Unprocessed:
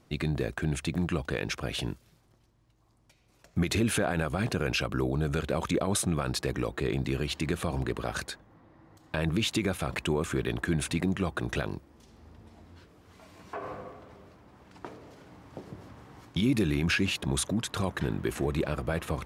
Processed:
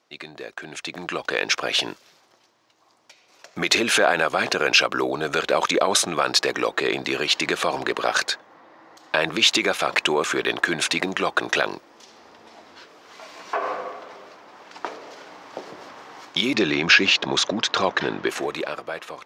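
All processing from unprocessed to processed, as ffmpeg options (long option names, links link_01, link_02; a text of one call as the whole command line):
ffmpeg -i in.wav -filter_complex "[0:a]asettb=1/sr,asplit=3[link_01][link_02][link_03];[link_01]atrim=end=16.544[link_04];[link_02]atrim=start=16.54:end=18.29,asetpts=PTS-STARTPTS,afade=type=in:duration=0.004:curve=qsin,afade=type=out:start_time=1.746:duration=0.004:curve=qsin,lowpass=frequency=6200:width=0.5412,lowpass=frequency=6200:width=1.3066,lowshelf=frequency=400:gain=5[link_05];[link_03]atrim=start=18.286[link_06];[link_04][link_05]acrossfade=duration=0.004:curve1=hsin:curve2=qsin[link_07];[link_07][link_06]acrossfade=duration=0.004:curve1=qsin:curve2=hsin,highpass=540,dynaudnorm=framelen=200:gausssize=11:maxgain=14dB,highshelf=frequency=7500:width_type=q:width=1.5:gain=-8" out.wav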